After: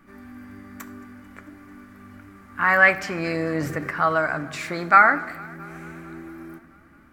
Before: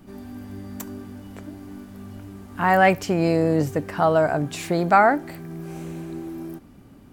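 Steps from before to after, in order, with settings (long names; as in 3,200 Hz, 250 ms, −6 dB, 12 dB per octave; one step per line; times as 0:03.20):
dynamic equaliser 4,500 Hz, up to +7 dB, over −43 dBFS, Q 0.98
on a send at −9 dB: convolution reverb RT60 0.95 s, pre-delay 4 ms
0:03.15–0:03.91: on the sum: transient designer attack +2 dB, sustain +7 dB
flat-topped bell 1,600 Hz +13 dB 1.3 octaves
feedback echo with a swinging delay time 222 ms, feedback 70%, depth 80 cents, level −23.5 dB
level −8 dB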